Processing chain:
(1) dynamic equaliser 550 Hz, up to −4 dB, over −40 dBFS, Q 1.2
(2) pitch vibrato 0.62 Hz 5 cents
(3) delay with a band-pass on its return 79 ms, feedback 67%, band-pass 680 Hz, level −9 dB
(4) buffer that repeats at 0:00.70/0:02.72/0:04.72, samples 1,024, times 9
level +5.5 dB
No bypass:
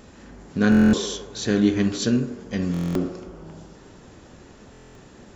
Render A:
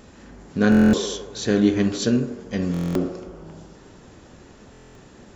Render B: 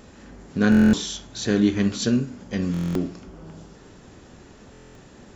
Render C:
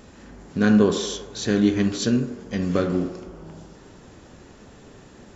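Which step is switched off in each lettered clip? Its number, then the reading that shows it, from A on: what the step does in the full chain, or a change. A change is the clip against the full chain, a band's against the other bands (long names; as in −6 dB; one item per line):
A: 1, 500 Hz band +2.5 dB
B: 3, change in momentary loudness spread −2 LU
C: 4, 500 Hz band +3.5 dB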